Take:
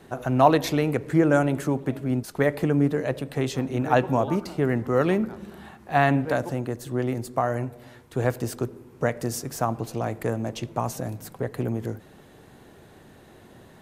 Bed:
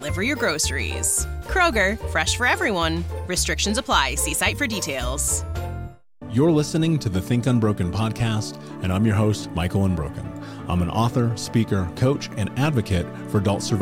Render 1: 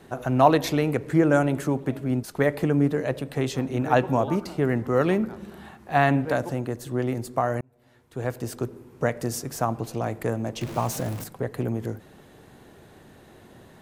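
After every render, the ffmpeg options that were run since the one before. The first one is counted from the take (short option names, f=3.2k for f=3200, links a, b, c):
-filter_complex "[0:a]asettb=1/sr,asplit=3[a][b][c];[a]atrim=end=10.614[d];[b]atrim=start=10.61:end=11.24,asetpts=PTS-STARTPTS,afade=t=in:d=0.004:c=qsin,afade=t=out:st=0.626:d=0.004:c=qsin,aeval=exprs='val(0)+0.5*0.0237*sgn(val(0))':c=same[e];[c]atrim=start=11.236[f];[d][e]acrossfade=d=0.004:c1=hsin:c2=qsin[g];[g][f]acrossfade=d=0.004:c1=qsin:c2=hsin,asplit=2[h][i];[h]atrim=end=7.61,asetpts=PTS-STARTPTS,afade=t=out:st=7.606:d=0.004:c=hsin[j];[i]atrim=start=7.61,asetpts=PTS-STARTPTS,afade=t=in:d=1.14[k];[j][k]concat=n=2:v=0:a=1"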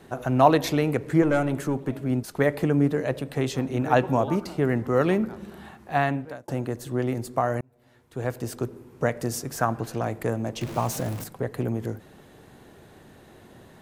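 -filter_complex "[0:a]asettb=1/sr,asplit=3[a][b][c];[a]atrim=end=1.224[d];[b]atrim=start=1.22:end=2,asetpts=PTS-STARTPTS,afade=t=in:d=0.004:c=qsin,afade=t=out:st=0.776:d=0.004:c=qsin,aeval=exprs='(tanh(4.47*val(0)+0.3)-tanh(0.3))/4.47':c=same[e];[c]atrim=start=1.996[f];[d][e]acrossfade=d=0.004:c1=hsin:c2=qsin[g];[g][f]acrossfade=d=0.004:c1=qsin:c2=hsin,asettb=1/sr,asplit=3[h][i][j];[h]atrim=end=9.574[k];[i]atrim=start=9.57:end=10.03,asetpts=PTS-STARTPTS,afade=t=in:d=0.004:c=qsin,afade=t=out:st=0.456:d=0.004:c=qsin,equalizer=f=1.6k:w=3:g=11[l];[j]atrim=start=10.026[m];[k][l]acrossfade=d=0.004:c1=hsin:c2=qsin[n];[n][m]acrossfade=d=0.004:c1=qsin:c2=hsin,asplit=2[o][p];[o]atrim=end=6.48,asetpts=PTS-STARTPTS,afade=t=out:st=5.8:d=0.68[q];[p]atrim=start=6.48,asetpts=PTS-STARTPTS,afade=t=in:d=0.004:c=hsin[r];[q][r]concat=n=2:v=0:a=1"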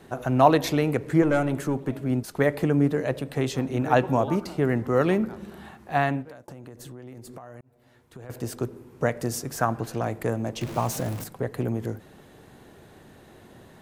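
-filter_complex "[0:a]asplit=3[a][b][c];[a]afade=t=out:st=6.22:d=0.02[d];[b]acompressor=threshold=-38dB:ratio=12:attack=3.2:release=140:knee=1:detection=peak,afade=t=in:st=6.22:d=0.02,afade=t=out:st=8.29:d=0.02[e];[c]afade=t=in:st=8.29:d=0.02[f];[d][e][f]amix=inputs=3:normalize=0"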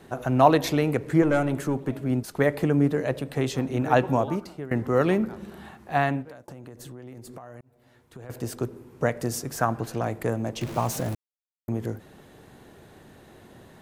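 -filter_complex "[0:a]asplit=4[a][b][c][d];[a]atrim=end=4.71,asetpts=PTS-STARTPTS,afade=t=out:st=4.14:d=0.57:silence=0.11885[e];[b]atrim=start=4.71:end=11.15,asetpts=PTS-STARTPTS,afade=t=in:d=0.004:c=hsin:silence=0.11885,afade=t=out:st=6.436:d=0.004:c=hsin[f];[c]atrim=start=11.15:end=11.68,asetpts=PTS-STARTPTS,volume=0[g];[d]atrim=start=11.68,asetpts=PTS-STARTPTS,afade=t=in:d=0.004:c=hsin[h];[e][f][g][h]concat=n=4:v=0:a=1"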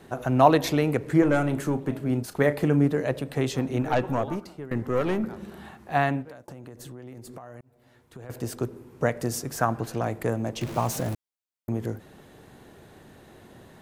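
-filter_complex "[0:a]asettb=1/sr,asplit=3[a][b][c];[a]atrim=end=1.124[d];[b]atrim=start=1.12:end=2.85,asetpts=PTS-STARTPTS,afade=t=in:d=0.004:c=qsin,afade=t=out:st=1.726:d=0.004:c=qsin,asplit=2[e][f];[f]adelay=34,volume=-12.5dB[g];[e][g]amix=inputs=2:normalize=0,atrim=end_sample=76293[h];[c]atrim=start=2.846[i];[d][h]acrossfade=d=0.004:c1=hsin:c2=qsin[j];[j][i]acrossfade=d=0.004:c1=qsin:c2=hsin,asettb=1/sr,asplit=3[k][l][m];[k]atrim=end=3.824[n];[l]atrim=start=3.82:end=5.24,asetpts=PTS-STARTPTS,afade=t=in:d=0.004:c=qsin,afade=t=out:st=1.416:d=0.004:c=qsin,aeval=exprs='(tanh(6.31*val(0)+0.5)-tanh(0.5))/6.31':c=same[o];[m]atrim=start=5.236[p];[n][o]acrossfade=d=0.004:c1=hsin:c2=qsin[q];[q][p]acrossfade=d=0.004:c1=qsin:c2=hsin"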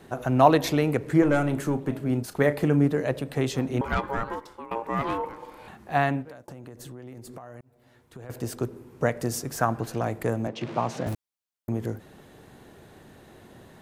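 -filter_complex "[0:a]asettb=1/sr,asplit=3[a][b][c];[a]atrim=end=3.814[d];[b]atrim=start=3.81:end=5.68,asetpts=PTS-STARTPTS,afade=t=in:d=0.004:c=qsin,afade=t=out:st=1.866:d=0.004:c=qsin,aeval=exprs='val(0)*sin(2*PI*690*n/s)':c=same[e];[c]atrim=start=5.676[f];[d][e]acrossfade=d=0.004:c1=hsin:c2=qsin[g];[g][f]acrossfade=d=0.004:c1=qsin:c2=hsin,asettb=1/sr,asplit=3[h][i][j];[h]atrim=end=10.474[k];[i]atrim=start=10.47:end=11.07,asetpts=PTS-STARTPTS,afade=t=in:d=0.004:c=qsin,afade=t=out:st=0.596:d=0.004:c=qsin,highpass=150,lowpass=3.8k[l];[j]atrim=start=11.066[m];[k][l]acrossfade=d=0.004:c1=hsin:c2=qsin[n];[n][m]acrossfade=d=0.004:c1=qsin:c2=hsin"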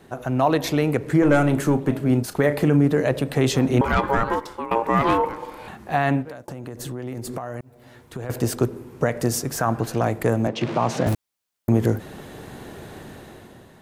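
-af "dynaudnorm=f=130:g=11:m=11.5dB,alimiter=limit=-8.5dB:level=0:latency=1:release=51"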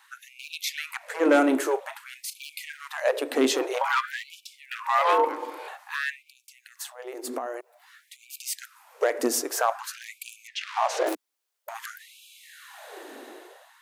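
-af "asoftclip=type=hard:threshold=-11.5dB,afftfilt=real='re*gte(b*sr/1024,240*pow(2300/240,0.5+0.5*sin(2*PI*0.51*pts/sr)))':imag='im*gte(b*sr/1024,240*pow(2300/240,0.5+0.5*sin(2*PI*0.51*pts/sr)))':win_size=1024:overlap=0.75"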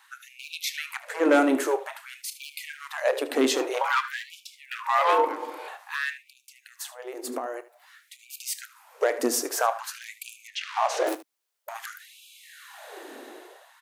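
-af "aecho=1:1:29|76:0.141|0.158"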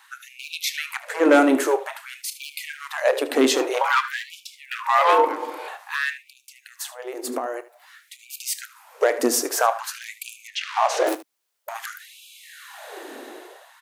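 -af "volume=4.5dB"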